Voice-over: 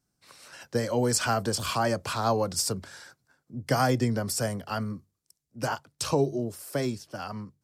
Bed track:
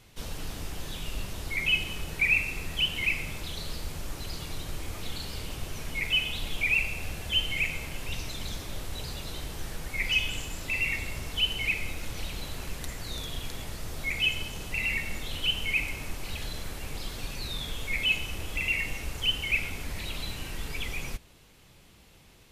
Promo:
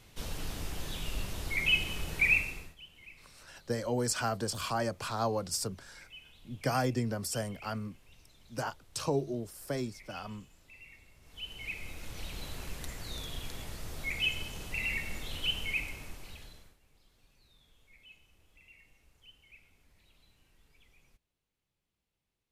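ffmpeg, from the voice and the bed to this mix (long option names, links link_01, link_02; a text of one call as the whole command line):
ffmpeg -i stem1.wav -i stem2.wav -filter_complex "[0:a]adelay=2950,volume=-6dB[link_01];[1:a]volume=19dB,afade=type=out:start_time=2.31:duration=0.44:silence=0.0668344,afade=type=in:start_time=11.2:duration=1.26:silence=0.0944061,afade=type=out:start_time=15.57:duration=1.2:silence=0.0501187[link_02];[link_01][link_02]amix=inputs=2:normalize=0" out.wav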